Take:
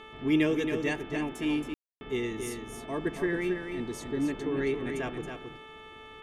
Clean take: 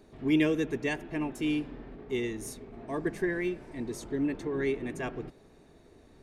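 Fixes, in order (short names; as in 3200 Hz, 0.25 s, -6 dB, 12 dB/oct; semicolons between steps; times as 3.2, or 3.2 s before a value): de-hum 437 Hz, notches 8; notch 1200 Hz, Q 30; room tone fill 1.74–2.01; inverse comb 0.274 s -6.5 dB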